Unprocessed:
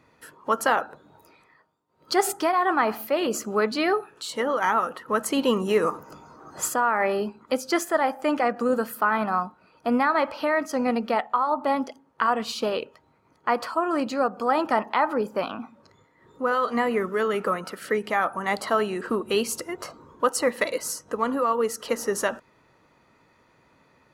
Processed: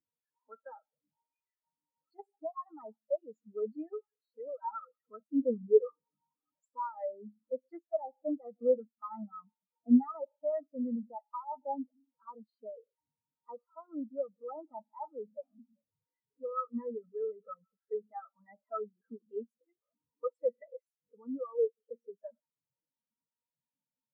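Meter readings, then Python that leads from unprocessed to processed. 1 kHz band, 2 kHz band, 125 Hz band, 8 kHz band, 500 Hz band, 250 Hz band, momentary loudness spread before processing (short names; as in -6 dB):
-19.0 dB, under -35 dB, under -15 dB, under -40 dB, -10.0 dB, -8.5 dB, 8 LU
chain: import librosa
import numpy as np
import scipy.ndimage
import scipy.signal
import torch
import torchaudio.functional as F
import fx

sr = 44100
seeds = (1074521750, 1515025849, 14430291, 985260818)

y = x + 0.5 * 10.0 ** (-24.0 / 20.0) * np.sign(x)
y = fx.notch_comb(y, sr, f0_hz=370.0)
y = fx.spectral_expand(y, sr, expansion=4.0)
y = y * 10.0 ** (-5.5 / 20.0)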